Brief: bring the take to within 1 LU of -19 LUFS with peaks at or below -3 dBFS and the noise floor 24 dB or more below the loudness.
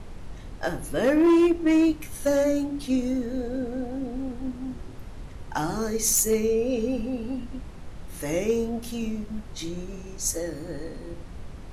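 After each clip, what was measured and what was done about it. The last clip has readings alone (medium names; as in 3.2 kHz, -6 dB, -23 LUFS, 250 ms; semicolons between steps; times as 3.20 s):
clipped samples 0.9%; clipping level -15.0 dBFS; noise floor -41 dBFS; noise floor target -50 dBFS; loudness -26.0 LUFS; peak level -15.0 dBFS; loudness target -19.0 LUFS
-> clip repair -15 dBFS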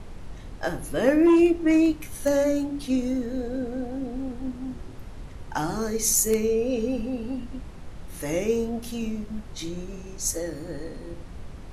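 clipped samples 0.0%; noise floor -41 dBFS; noise floor target -50 dBFS
-> noise print and reduce 9 dB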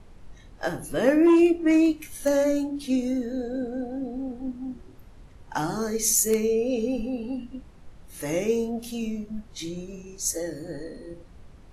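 noise floor -49 dBFS; noise floor target -50 dBFS
-> noise print and reduce 6 dB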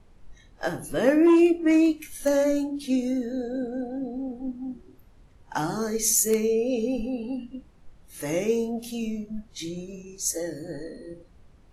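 noise floor -55 dBFS; loudness -25.5 LUFS; peak level -7.0 dBFS; loudness target -19.0 LUFS
-> trim +6.5 dB; peak limiter -3 dBFS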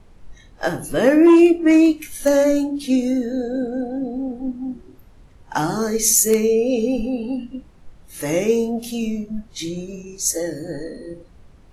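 loudness -19.0 LUFS; peak level -3.0 dBFS; noise floor -48 dBFS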